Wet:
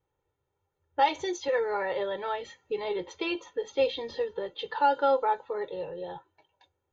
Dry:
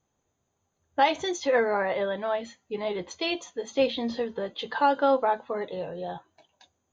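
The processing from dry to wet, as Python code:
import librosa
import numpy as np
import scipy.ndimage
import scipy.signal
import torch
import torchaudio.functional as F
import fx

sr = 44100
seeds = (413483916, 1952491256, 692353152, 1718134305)

y = fx.env_lowpass(x, sr, base_hz=2800.0, full_db=-20.0)
y = y + 0.83 * np.pad(y, (int(2.2 * sr / 1000.0), 0))[:len(y)]
y = fx.band_squash(y, sr, depth_pct=70, at=(1.48, 3.76))
y = y * 10.0 ** (-5.0 / 20.0)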